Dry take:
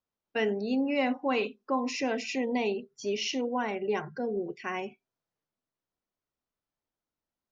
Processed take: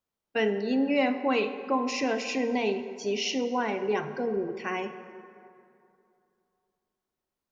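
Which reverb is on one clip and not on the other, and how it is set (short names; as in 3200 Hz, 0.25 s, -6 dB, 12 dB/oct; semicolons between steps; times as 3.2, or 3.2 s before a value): plate-style reverb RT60 2.7 s, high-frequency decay 0.5×, DRR 9 dB; gain +2 dB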